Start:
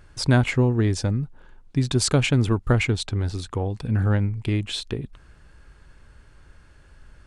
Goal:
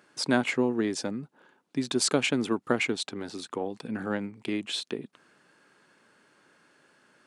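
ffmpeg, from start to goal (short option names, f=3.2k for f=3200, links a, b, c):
-af "highpass=f=210:w=0.5412,highpass=f=210:w=1.3066,volume=-2.5dB"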